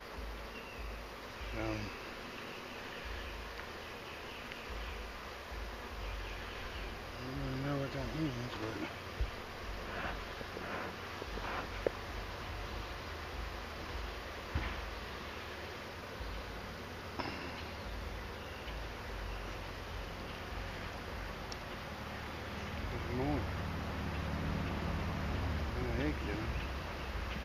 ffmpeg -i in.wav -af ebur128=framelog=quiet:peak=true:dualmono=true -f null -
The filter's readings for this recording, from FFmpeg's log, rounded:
Integrated loudness:
  I:         -38.7 LUFS
  Threshold: -48.7 LUFS
Loudness range:
  LRA:         6.0 LU
  Threshold: -58.9 LUFS
  LRA low:   -41.3 LUFS
  LRA high:  -35.3 LUFS
True peak:
  Peak:      -16.4 dBFS